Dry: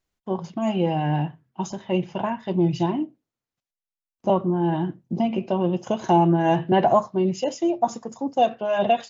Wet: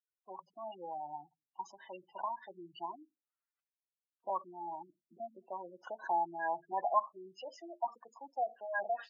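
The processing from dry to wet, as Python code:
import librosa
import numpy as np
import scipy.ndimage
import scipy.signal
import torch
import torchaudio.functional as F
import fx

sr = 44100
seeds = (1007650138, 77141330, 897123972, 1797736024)

y = fx.env_lowpass_down(x, sr, base_hz=2000.0, full_db=-15.5)
y = fx.spec_gate(y, sr, threshold_db=-15, keep='strong')
y = fx.ladder_bandpass(y, sr, hz=1700.0, resonance_pct=45)
y = y * 10.0 ** (7.5 / 20.0)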